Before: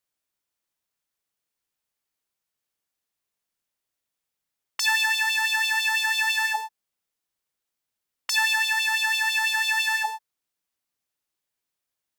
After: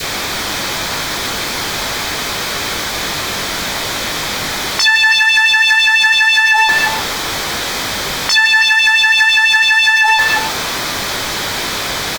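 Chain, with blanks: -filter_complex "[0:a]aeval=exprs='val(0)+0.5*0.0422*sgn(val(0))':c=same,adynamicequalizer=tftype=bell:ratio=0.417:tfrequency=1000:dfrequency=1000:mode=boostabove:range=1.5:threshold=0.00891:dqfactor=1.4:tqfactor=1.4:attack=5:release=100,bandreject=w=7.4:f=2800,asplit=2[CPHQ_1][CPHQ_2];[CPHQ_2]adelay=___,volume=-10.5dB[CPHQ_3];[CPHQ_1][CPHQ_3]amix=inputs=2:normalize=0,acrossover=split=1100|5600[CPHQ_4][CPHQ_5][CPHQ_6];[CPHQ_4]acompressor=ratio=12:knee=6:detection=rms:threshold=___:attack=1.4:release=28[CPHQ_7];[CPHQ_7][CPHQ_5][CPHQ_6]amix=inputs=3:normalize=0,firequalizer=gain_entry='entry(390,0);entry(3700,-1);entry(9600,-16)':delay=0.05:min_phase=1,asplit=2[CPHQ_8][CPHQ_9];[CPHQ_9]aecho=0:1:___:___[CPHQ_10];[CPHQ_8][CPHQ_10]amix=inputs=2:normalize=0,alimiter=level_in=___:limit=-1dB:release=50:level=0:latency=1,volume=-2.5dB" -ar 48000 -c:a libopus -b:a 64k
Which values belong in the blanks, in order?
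20, -38dB, 319, 0.316, 23.5dB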